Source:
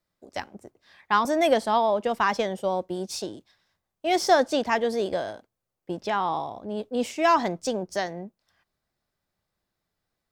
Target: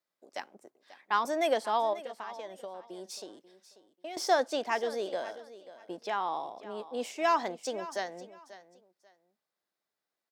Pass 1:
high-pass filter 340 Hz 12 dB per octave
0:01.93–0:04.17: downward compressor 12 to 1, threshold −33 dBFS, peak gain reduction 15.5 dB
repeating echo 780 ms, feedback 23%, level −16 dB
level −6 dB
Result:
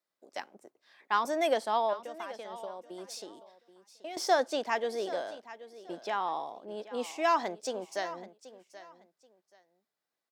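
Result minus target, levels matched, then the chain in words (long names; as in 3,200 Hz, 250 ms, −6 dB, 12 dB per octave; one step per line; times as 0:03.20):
echo 241 ms late
high-pass filter 340 Hz 12 dB per octave
0:01.93–0:04.17: downward compressor 12 to 1, threshold −33 dBFS, peak gain reduction 15.5 dB
repeating echo 539 ms, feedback 23%, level −16 dB
level −6 dB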